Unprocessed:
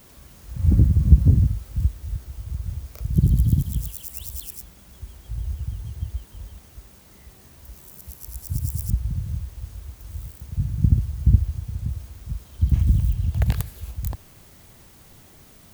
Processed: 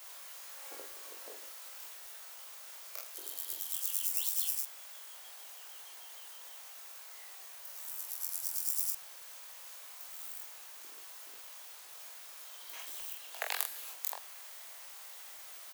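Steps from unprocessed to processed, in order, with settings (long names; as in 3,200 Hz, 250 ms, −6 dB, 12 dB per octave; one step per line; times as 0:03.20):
Bessel high-pass filter 910 Hz, order 8
ambience of single reflections 21 ms −4.5 dB, 45 ms −6 dB
level +1 dB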